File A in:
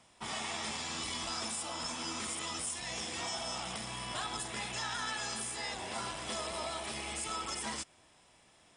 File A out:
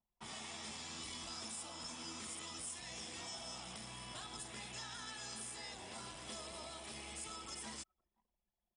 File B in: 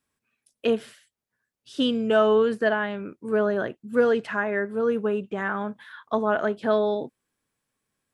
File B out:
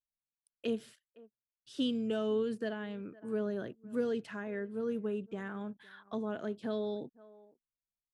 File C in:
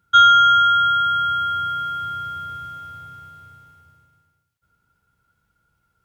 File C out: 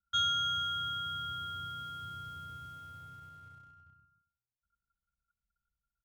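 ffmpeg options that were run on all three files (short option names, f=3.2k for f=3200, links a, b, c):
-filter_complex "[0:a]asplit=2[a][b];[b]adelay=507.3,volume=-26dB,highshelf=f=4k:g=-11.4[c];[a][c]amix=inputs=2:normalize=0,acrossover=split=420|3000[d][e][f];[e]acompressor=threshold=-47dB:ratio=2[g];[d][g][f]amix=inputs=3:normalize=0,anlmdn=0.000631,volume=-7.5dB"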